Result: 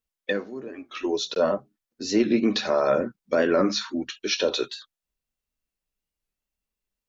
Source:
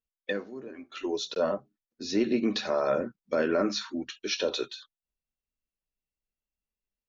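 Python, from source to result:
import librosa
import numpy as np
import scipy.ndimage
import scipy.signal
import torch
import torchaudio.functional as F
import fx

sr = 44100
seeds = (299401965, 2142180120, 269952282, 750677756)

y = fx.record_warp(x, sr, rpm=45.0, depth_cents=100.0)
y = y * librosa.db_to_amplitude(5.0)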